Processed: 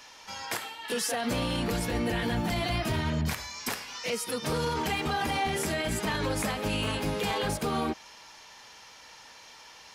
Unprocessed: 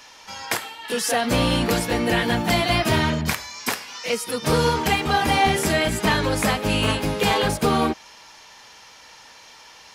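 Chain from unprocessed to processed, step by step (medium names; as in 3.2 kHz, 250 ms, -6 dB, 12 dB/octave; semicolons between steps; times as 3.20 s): 1.65–4.12 s: bass shelf 120 Hz +9.5 dB; peak limiter -17 dBFS, peak gain reduction 10.5 dB; trim -4 dB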